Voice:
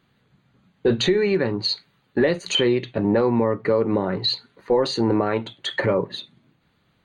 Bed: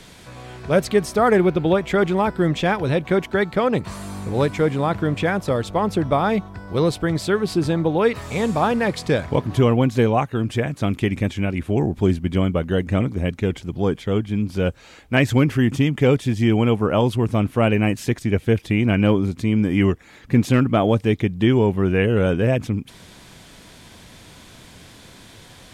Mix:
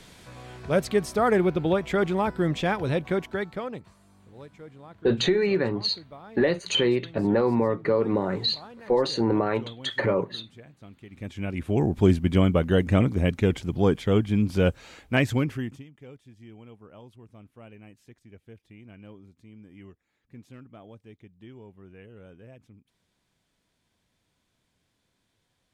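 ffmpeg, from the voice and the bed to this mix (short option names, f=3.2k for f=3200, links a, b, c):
-filter_complex "[0:a]adelay=4200,volume=-3dB[a];[1:a]volume=20dB,afade=t=out:st=2.97:d=0.97:silence=0.0944061,afade=t=in:st=11.1:d=0.98:silence=0.0530884,afade=t=out:st=14.72:d=1.12:silence=0.0334965[b];[a][b]amix=inputs=2:normalize=0"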